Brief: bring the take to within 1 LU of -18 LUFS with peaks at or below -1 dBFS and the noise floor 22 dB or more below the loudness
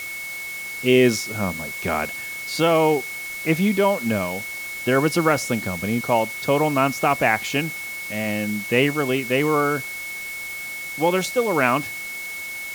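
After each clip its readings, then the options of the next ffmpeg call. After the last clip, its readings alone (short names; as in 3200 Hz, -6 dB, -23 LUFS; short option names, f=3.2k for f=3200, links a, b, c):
steady tone 2200 Hz; tone level -30 dBFS; noise floor -32 dBFS; noise floor target -44 dBFS; loudness -22.0 LUFS; peak -3.5 dBFS; loudness target -18.0 LUFS
-> -af "bandreject=f=2.2k:w=30"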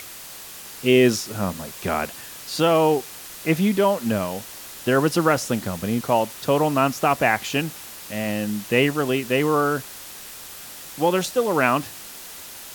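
steady tone none; noise floor -39 dBFS; noise floor target -44 dBFS
-> -af "afftdn=nr=6:nf=-39"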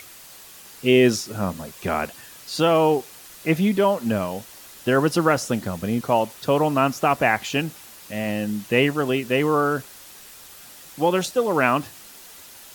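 noise floor -44 dBFS; loudness -22.0 LUFS; peak -3.5 dBFS; loudness target -18.0 LUFS
-> -af "volume=4dB,alimiter=limit=-1dB:level=0:latency=1"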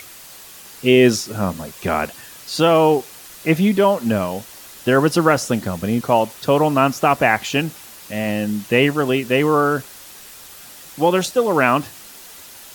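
loudness -18.0 LUFS; peak -1.0 dBFS; noise floor -40 dBFS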